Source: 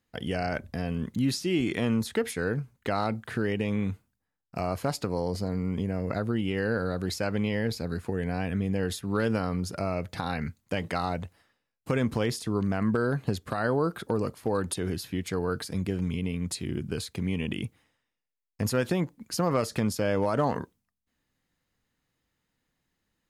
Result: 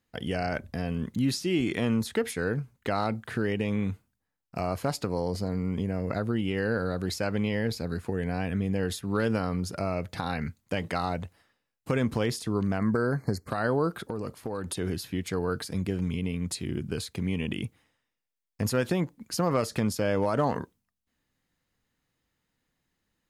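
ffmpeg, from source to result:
ffmpeg -i in.wav -filter_complex "[0:a]asplit=3[link_01][link_02][link_03];[link_01]afade=type=out:start_time=12.78:duration=0.02[link_04];[link_02]asuperstop=centerf=3100:order=20:qfactor=1.7,afade=type=in:start_time=12.78:duration=0.02,afade=type=out:start_time=13.47:duration=0.02[link_05];[link_03]afade=type=in:start_time=13.47:duration=0.02[link_06];[link_04][link_05][link_06]amix=inputs=3:normalize=0,asettb=1/sr,asplit=3[link_07][link_08][link_09];[link_07]atrim=end=14.024[link_10];[link_08]atrim=start=14.02:end=14.74,asetpts=PTS-STARTPTS,afade=type=in:duration=0.004:curve=qsin,afade=type=out:start_time=0.716:duration=0.004:curve=qsin,acompressor=threshold=-29dB:ratio=4:attack=3.2:release=140:knee=1:detection=peak[link_11];[link_09]atrim=start=14.736[link_12];[link_10][link_11]acrossfade=duration=0.004:curve1=hsin:curve2=qsin[link_13];[link_13][link_12]acrossfade=duration=0.004:curve1=qsin:curve2=hsin" out.wav

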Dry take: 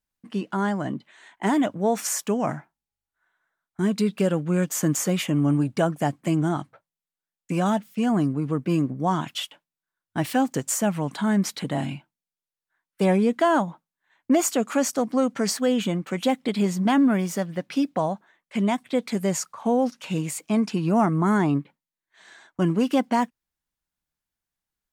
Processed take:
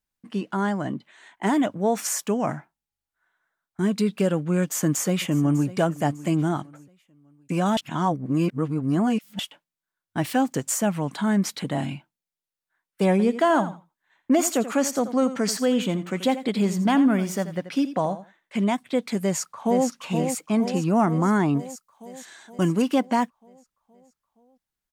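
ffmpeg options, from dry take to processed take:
ffmpeg -i in.wav -filter_complex "[0:a]asplit=2[link_01][link_02];[link_02]afade=type=in:start_time=4.61:duration=0.01,afade=type=out:start_time=5.68:duration=0.01,aecho=0:1:600|1200|1800:0.133352|0.0466733|0.0163356[link_03];[link_01][link_03]amix=inputs=2:normalize=0,asettb=1/sr,asplit=3[link_04][link_05][link_06];[link_04]atrim=end=13.114[link_07];[link_05]atrim=start=13.11:end=18.64,asetpts=PTS-STARTPTS,afade=type=in:duration=0.004:curve=qsin,afade=type=out:start_time=5.526:duration=0.004:curve=qsin,aecho=1:1:84|168:0.224|0.0336,atrim=end_sample=243873[link_08];[link_06]atrim=start=18.636[link_09];[link_07][link_08]acrossfade=duration=0.004:curve1=hsin:curve2=qsin[link_10];[link_10][link_09]acrossfade=duration=0.004:curve1=qsin:curve2=hsin,asplit=2[link_11][link_12];[link_12]afade=type=in:start_time=19.21:duration=0.01,afade=type=out:start_time=19.87:duration=0.01,aecho=0:1:470|940|1410|1880|2350|2820|3290|3760|4230|4700:0.501187|0.325772|0.211752|0.137639|0.0894651|0.0581523|0.037799|0.0245693|0.0159701|0.0103805[link_13];[link_11][link_13]amix=inputs=2:normalize=0,asettb=1/sr,asplit=3[link_14][link_15][link_16];[link_14]atrim=end=21.594[link_17];[link_15]atrim=start=21.59:end=22.82,asetpts=PTS-STARTPTS,afade=type=in:duration=0.004:curve=qsin,afade=type=out:start_time=1.226:duration=0.004:curve=qsin,highshelf=frequency=4900:gain=12[link_18];[link_16]atrim=start=22.816[link_19];[link_17][link_18]acrossfade=duration=0.004:curve1=hsin:curve2=qsin[link_20];[link_20][link_19]acrossfade=duration=0.004:curve1=qsin:curve2=hsin,asplit=3[link_21][link_22][link_23];[link_21]atrim=end=7.772[link_24];[link_22]atrim=start=7.768:end=9.392,asetpts=PTS-STARTPTS,areverse[link_25];[link_23]atrim=start=9.388[link_26];[link_24][link_25]acrossfade=duration=0.004:curve1=hsin:curve2=hsin[link_27];[link_27][link_26]acrossfade=duration=0.004:curve1=hsin:curve2=hsin" out.wav

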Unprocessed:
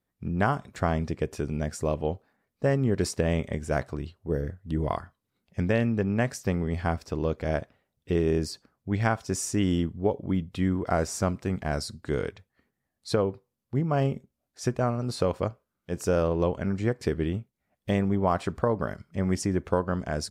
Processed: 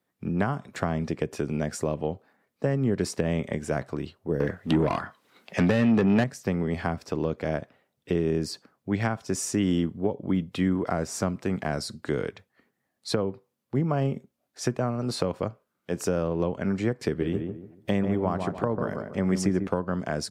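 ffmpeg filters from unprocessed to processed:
ffmpeg -i in.wav -filter_complex "[0:a]asettb=1/sr,asplit=3[link_01][link_02][link_03];[link_01]atrim=end=4.404[link_04];[link_02]atrim=start=4.4:end=6.24,asetpts=PTS-STARTPTS,afade=type=in:duration=0.004:curve=qsin,afade=type=out:start_time=1.836:duration=0.004:curve=qsin,asplit=2[link_05][link_06];[link_06]highpass=frequency=720:poles=1,volume=26dB,asoftclip=type=tanh:threshold=-10dB[link_07];[link_05][link_07]amix=inputs=2:normalize=0,lowpass=frequency=4200:poles=1,volume=-6dB[link_08];[link_03]atrim=start=6.236[link_09];[link_04][link_08]acrossfade=duration=0.004:curve1=hsin:curve2=qsin[link_10];[link_10][link_09]acrossfade=duration=0.004:curve1=qsin:curve2=hsin,asettb=1/sr,asplit=3[link_11][link_12][link_13];[link_11]atrim=end=17.074[link_14];[link_12]atrim=start=17.07:end=19.67,asetpts=PTS-STARTPTS,afade=type=in:duration=0.004:curve=qsin,afade=type=out:start_time=2.596:duration=0.004:curve=qsin,asplit=2[link_15][link_16];[link_16]adelay=144,lowpass=frequency=1000:poles=1,volume=-6dB,asplit=2[link_17][link_18];[link_18]adelay=144,lowpass=frequency=1000:poles=1,volume=0.31,asplit=2[link_19][link_20];[link_20]adelay=144,lowpass=frequency=1000:poles=1,volume=0.31,asplit=2[link_21][link_22];[link_22]adelay=144,lowpass=frequency=1000:poles=1,volume=0.31[link_23];[link_15][link_17][link_19][link_21][link_23]amix=inputs=5:normalize=0,atrim=end_sample=114660[link_24];[link_13]atrim=start=19.666[link_25];[link_14][link_24]acrossfade=duration=0.004:curve1=hsin:curve2=qsin[link_26];[link_26][link_25]acrossfade=duration=0.004:curve1=qsin:curve2=hsin,highpass=140,bass=frequency=250:gain=-3,treble=frequency=4000:gain=-3,acrossover=split=230[link_27][link_28];[link_28]acompressor=threshold=-33dB:ratio=4[link_29];[link_27][link_29]amix=inputs=2:normalize=0,volume=6dB" out.wav

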